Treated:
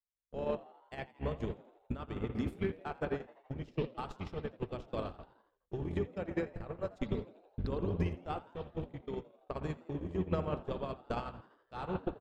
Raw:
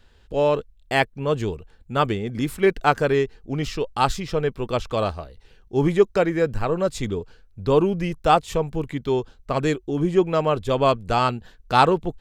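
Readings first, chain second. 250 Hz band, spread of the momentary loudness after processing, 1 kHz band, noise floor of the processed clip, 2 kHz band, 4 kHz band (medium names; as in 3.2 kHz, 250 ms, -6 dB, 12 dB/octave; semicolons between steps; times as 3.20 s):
-14.0 dB, 10 LU, -21.5 dB, -75 dBFS, -20.0 dB, -22.0 dB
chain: octave divider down 1 oct, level 0 dB; recorder AGC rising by 27 dB/s; peak limiter -10.5 dBFS, peak gain reduction 8 dB; compression 12:1, threshold -22 dBFS, peak gain reduction 8.5 dB; spring tank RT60 1.9 s, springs 59 ms, chirp 55 ms, DRR 3.5 dB; Chebyshev shaper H 5 -24 dB, 6 -42 dB, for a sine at -10 dBFS; gate -20 dBFS, range -58 dB; treble shelf 6.5 kHz -10.5 dB; on a send: frequency-shifting echo 83 ms, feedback 61%, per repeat +91 Hz, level -20.5 dB; on the sum: trim -2 dB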